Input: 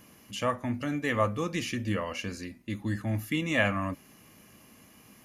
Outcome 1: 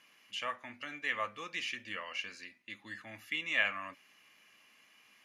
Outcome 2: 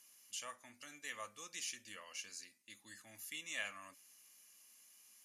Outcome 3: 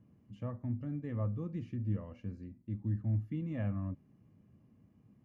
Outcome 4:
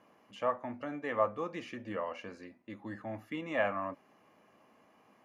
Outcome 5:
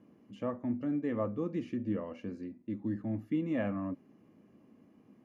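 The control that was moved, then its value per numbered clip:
band-pass filter, frequency: 2.5 kHz, 7.9 kHz, 110 Hz, 760 Hz, 290 Hz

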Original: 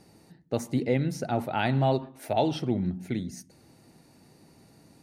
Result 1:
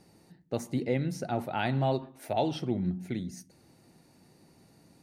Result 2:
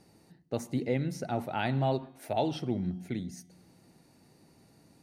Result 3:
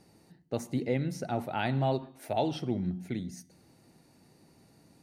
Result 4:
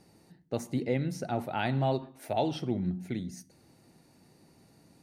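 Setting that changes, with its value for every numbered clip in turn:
feedback comb, decay: 0.17 s, 1.8 s, 0.88 s, 0.39 s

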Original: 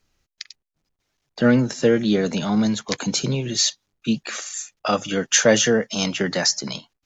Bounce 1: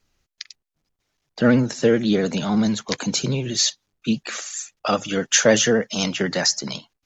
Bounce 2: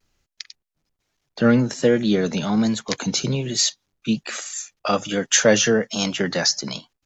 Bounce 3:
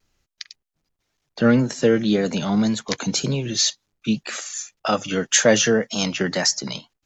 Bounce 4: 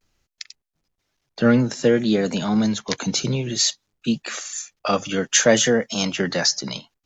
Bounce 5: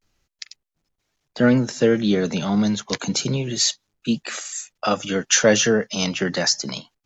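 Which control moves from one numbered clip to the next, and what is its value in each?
vibrato, rate: 16 Hz, 1.2 Hz, 1.9 Hz, 0.57 Hz, 0.3 Hz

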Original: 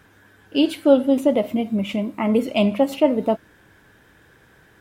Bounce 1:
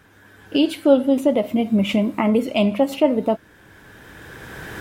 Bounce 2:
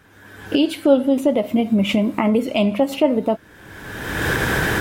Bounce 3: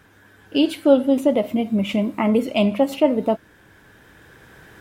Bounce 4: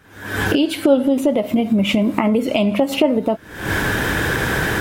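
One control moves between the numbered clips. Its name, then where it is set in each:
recorder AGC, rising by: 14 dB/s, 35 dB/s, 5.3 dB/s, 86 dB/s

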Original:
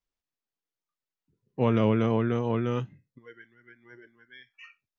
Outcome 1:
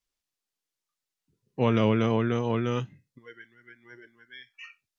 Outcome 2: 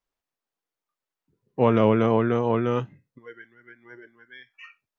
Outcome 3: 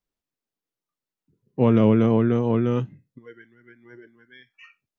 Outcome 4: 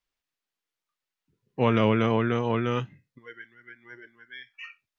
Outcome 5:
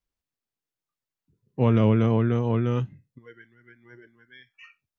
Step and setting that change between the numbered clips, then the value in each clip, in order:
peaking EQ, frequency: 6.7 kHz, 790 Hz, 230 Hz, 2.3 kHz, 75 Hz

